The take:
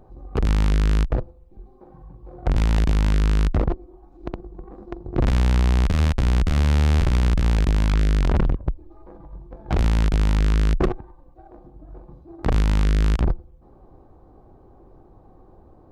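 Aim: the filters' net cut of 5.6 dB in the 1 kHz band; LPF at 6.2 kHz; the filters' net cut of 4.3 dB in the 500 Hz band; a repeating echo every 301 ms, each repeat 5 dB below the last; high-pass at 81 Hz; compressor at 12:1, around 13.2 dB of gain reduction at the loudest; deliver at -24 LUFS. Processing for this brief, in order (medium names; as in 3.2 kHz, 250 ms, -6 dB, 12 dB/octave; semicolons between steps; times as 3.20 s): high-pass 81 Hz; low-pass 6.2 kHz; peaking EQ 500 Hz -4.5 dB; peaking EQ 1 kHz -6 dB; compression 12:1, threshold -31 dBFS; feedback delay 301 ms, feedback 56%, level -5 dB; trim +13.5 dB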